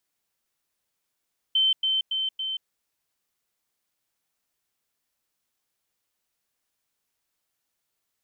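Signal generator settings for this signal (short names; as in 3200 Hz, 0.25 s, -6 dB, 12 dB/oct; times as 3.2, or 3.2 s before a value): level ladder 3090 Hz -18 dBFS, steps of -3 dB, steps 4, 0.18 s 0.10 s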